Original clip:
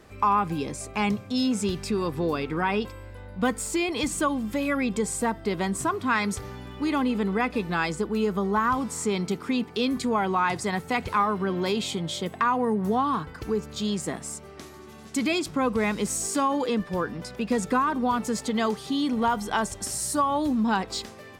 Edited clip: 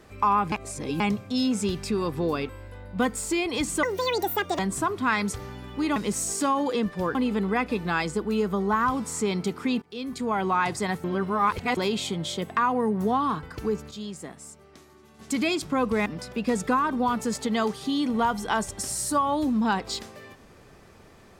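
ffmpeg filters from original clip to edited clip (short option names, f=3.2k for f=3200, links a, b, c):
-filter_complex "[0:a]asplit=14[a][b][c][d][e][f][g][h][i][j][k][l][m][n];[a]atrim=end=0.522[o];[b]atrim=start=0.518:end=1.002,asetpts=PTS-STARTPTS,areverse[p];[c]atrim=start=0.998:end=2.492[q];[d]atrim=start=2.918:end=4.264[r];[e]atrim=start=4.26:end=5.62,asetpts=PTS-STARTPTS,asetrate=78939,aresample=44100,atrim=end_sample=33506,asetpts=PTS-STARTPTS[s];[f]atrim=start=5.616:end=6.992[t];[g]atrim=start=15.898:end=17.092[u];[h]atrim=start=6.988:end=9.66,asetpts=PTS-STARTPTS,afade=t=out:st=2.668:d=0.004:c=hsin:silence=0.0944061[v];[i]atrim=start=9.66:end=10.882,asetpts=PTS-STARTPTS,afade=t=in:d=0.64:silence=0.0944061[w];[j]atrim=start=10.878:end=11.612,asetpts=PTS-STARTPTS,areverse[x];[k]atrim=start=11.608:end=13.75,asetpts=PTS-STARTPTS,afade=t=out:st=1.862:d=0.28:c=log:silence=0.375837[y];[l]atrim=start=13.75:end=15.03,asetpts=PTS-STARTPTS,volume=-8.5dB[z];[m]atrim=start=15.03:end=15.902,asetpts=PTS-STARTPTS,afade=t=in:d=0.28:c=log:silence=0.375837[aa];[n]atrim=start=17.088[ab];[o][p]acrossfade=d=0.004:c1=hsin:c2=hsin[ac];[ac][q]acrossfade=d=0.004:c1=hsin:c2=hsin[ad];[ad][r]acrossfade=d=0.004:c1=hsin:c2=hsin[ae];[ae][s]acrossfade=d=0.004:c1=hsin:c2=hsin[af];[af][t]acrossfade=d=0.004:c1=hsin:c2=hsin[ag];[ag][u]acrossfade=d=0.004:c1=hsin:c2=hsin[ah];[v][w]concat=n=2:v=0:a=1[ai];[ah][ai]acrossfade=d=0.004:c1=hsin:c2=hsin[aj];[aj][x]acrossfade=d=0.004:c1=hsin:c2=hsin[ak];[y][z][aa]concat=n=3:v=0:a=1[al];[ak][al]acrossfade=d=0.004:c1=hsin:c2=hsin[am];[am][ab]acrossfade=d=0.004:c1=hsin:c2=hsin"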